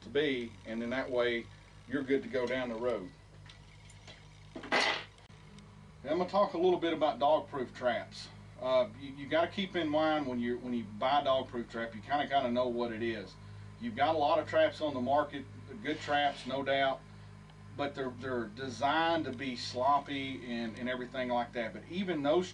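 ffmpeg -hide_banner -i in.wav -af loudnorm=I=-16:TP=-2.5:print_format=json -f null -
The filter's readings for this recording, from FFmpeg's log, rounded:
"input_i" : "-33.3",
"input_tp" : "-16.8",
"input_lra" : "3.3",
"input_thresh" : "-44.0",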